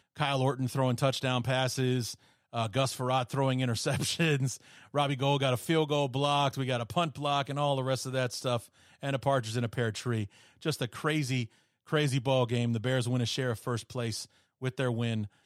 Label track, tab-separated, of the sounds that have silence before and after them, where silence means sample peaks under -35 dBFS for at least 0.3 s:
2.540000	4.550000	sound
4.940000	8.580000	sound
9.030000	10.250000	sound
10.650000	11.450000	sound
11.920000	14.230000	sound